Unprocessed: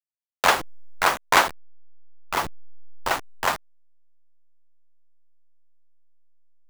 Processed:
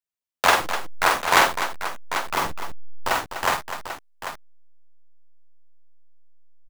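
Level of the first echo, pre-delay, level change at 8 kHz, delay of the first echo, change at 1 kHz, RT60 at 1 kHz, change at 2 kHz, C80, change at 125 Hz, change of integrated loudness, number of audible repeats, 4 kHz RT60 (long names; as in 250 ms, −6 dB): −4.0 dB, no reverb audible, +2.0 dB, 47 ms, +2.0 dB, no reverb audible, +2.0 dB, no reverb audible, +2.5 dB, +1.0 dB, 3, no reverb audible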